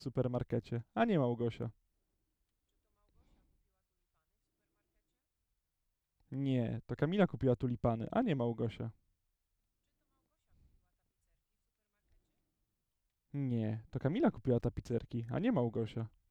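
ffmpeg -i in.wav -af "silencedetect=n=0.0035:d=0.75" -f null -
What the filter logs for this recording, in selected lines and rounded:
silence_start: 1.70
silence_end: 6.32 | silence_duration: 4.62
silence_start: 8.90
silence_end: 13.34 | silence_duration: 4.44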